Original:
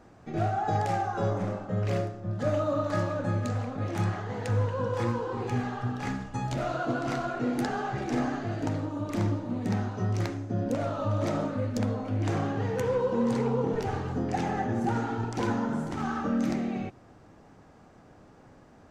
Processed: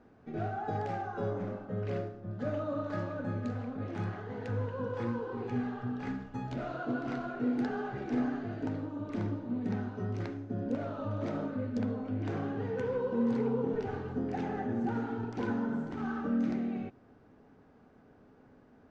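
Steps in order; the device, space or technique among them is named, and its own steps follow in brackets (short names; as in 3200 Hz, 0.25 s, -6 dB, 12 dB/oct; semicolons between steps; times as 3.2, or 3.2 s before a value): inside a cardboard box (LPF 4000 Hz 12 dB/oct; small resonant body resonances 250/420/1500 Hz, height 8 dB, ringing for 45 ms); gain -8.5 dB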